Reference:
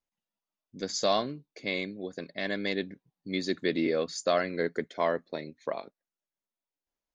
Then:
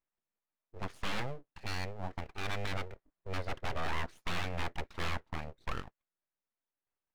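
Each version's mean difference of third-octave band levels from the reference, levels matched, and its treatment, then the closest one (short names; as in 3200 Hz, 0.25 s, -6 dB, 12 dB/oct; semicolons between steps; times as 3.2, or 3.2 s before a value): 12.0 dB: wavefolder -25.5 dBFS; ladder low-pass 2400 Hz, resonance 25%; full-wave rectifier; gain +6 dB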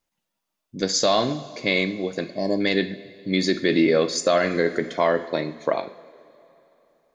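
4.5 dB: spectral gain 2.26–2.61, 1100–4200 Hz -26 dB; two-slope reverb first 0.54 s, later 3.2 s, from -17 dB, DRR 9 dB; maximiser +18.5 dB; gain -8 dB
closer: second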